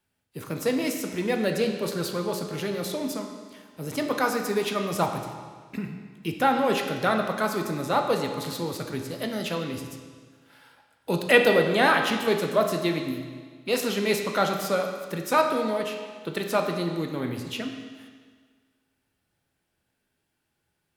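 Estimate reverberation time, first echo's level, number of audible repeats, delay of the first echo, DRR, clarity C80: 1.6 s, none, none, none, 4.0 dB, 7.0 dB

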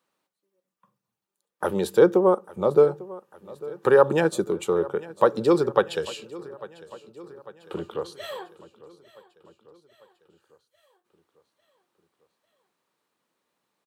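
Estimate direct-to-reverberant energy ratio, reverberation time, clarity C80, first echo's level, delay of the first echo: none, none, none, -19.5 dB, 0.848 s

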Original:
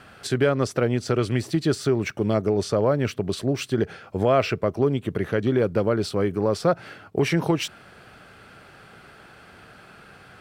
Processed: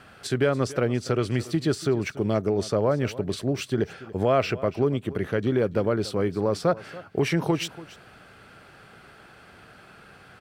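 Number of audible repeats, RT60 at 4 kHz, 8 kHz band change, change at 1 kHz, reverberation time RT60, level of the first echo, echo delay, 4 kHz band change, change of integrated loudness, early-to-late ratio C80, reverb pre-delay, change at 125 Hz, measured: 1, none, -2.0 dB, -2.0 dB, none, -18.0 dB, 0.286 s, -2.0 dB, -2.0 dB, none, none, -2.0 dB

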